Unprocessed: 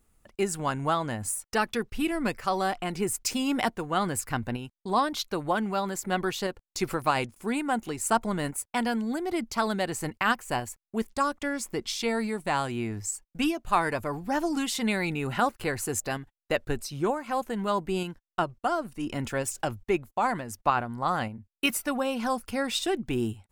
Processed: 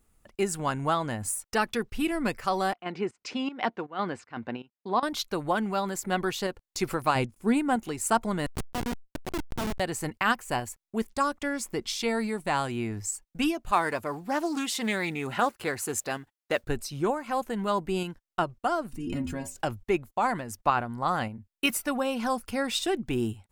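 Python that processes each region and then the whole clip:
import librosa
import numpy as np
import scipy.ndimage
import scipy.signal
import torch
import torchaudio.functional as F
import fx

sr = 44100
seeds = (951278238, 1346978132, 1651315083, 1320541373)

y = fx.chain(x, sr, fx.volume_shaper(bpm=159, per_beat=1, depth_db=-16, release_ms=125.0, shape='slow start'),
    fx.bandpass_edges(low_hz=220.0, high_hz=4400.0),
    fx.air_absorb(metres=100.0), at=(2.73, 5.03))
y = fx.chain(y, sr, fx.low_shelf(hz=380.0, db=9.5),
    fx.upward_expand(threshold_db=-37.0, expansion=1.5), at=(7.15, 7.76))
y = fx.chain(y, sr, fx.schmitt(flips_db=-24.5),
    fx.sustainer(db_per_s=140.0), at=(8.46, 9.8))
y = fx.chain(y, sr, fx.highpass(hz=220.0, slope=6),
    fx.mod_noise(seeds[0], snr_db=32),
    fx.doppler_dist(depth_ms=0.13), at=(13.71, 16.64))
y = fx.chain(y, sr, fx.low_shelf_res(hz=400.0, db=10.5, q=1.5),
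    fx.stiff_resonator(f0_hz=82.0, decay_s=0.32, stiffness=0.008),
    fx.pre_swell(db_per_s=27.0), at=(18.93, 19.56))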